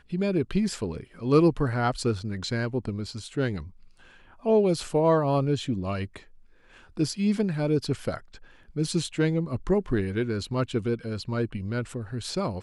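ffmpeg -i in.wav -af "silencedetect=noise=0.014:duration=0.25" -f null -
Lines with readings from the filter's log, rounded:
silence_start: 3.68
silence_end: 4.45 | silence_duration: 0.76
silence_start: 6.17
silence_end: 6.97 | silence_duration: 0.80
silence_start: 8.36
silence_end: 8.76 | silence_duration: 0.40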